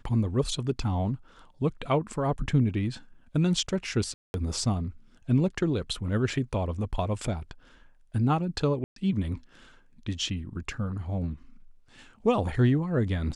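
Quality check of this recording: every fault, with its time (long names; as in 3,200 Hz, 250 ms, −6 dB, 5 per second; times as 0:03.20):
0:04.14–0:04.34: drop-out 201 ms
0:08.84–0:08.96: drop-out 123 ms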